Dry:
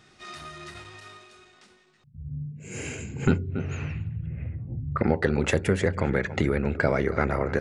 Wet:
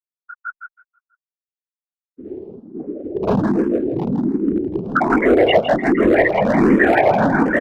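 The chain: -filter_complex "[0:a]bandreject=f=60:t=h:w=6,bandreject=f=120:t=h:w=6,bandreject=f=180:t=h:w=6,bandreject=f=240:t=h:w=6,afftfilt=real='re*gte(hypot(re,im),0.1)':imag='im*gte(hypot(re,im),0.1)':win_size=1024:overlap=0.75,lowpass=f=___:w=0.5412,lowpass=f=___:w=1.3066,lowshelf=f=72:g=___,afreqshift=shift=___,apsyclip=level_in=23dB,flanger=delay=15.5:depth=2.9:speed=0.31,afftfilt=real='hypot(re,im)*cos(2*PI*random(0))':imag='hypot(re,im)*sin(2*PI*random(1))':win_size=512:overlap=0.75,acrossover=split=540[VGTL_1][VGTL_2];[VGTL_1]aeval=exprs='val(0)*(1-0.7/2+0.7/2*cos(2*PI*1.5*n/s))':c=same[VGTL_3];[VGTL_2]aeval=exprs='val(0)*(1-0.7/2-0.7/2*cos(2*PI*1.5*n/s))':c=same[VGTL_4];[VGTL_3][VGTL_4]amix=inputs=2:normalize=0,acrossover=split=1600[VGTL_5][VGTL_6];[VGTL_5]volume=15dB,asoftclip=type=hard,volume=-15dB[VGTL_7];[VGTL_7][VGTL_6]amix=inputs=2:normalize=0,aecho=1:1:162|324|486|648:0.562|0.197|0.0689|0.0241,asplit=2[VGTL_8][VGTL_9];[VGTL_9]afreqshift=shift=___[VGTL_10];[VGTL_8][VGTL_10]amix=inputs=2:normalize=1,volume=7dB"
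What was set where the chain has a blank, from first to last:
2100, 2100, -4, 180, 1.3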